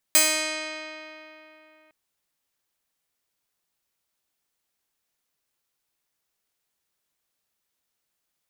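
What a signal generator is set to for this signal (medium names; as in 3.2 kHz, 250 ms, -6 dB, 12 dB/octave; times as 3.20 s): plucked string D#4, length 1.76 s, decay 3.38 s, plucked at 0.22, bright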